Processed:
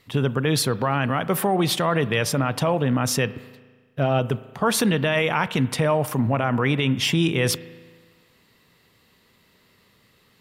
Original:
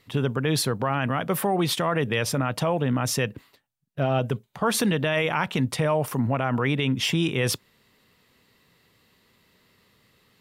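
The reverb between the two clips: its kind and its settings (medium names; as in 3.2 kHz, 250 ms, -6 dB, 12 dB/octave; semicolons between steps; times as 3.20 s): spring tank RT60 1.5 s, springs 36 ms, chirp 80 ms, DRR 16 dB; trim +2.5 dB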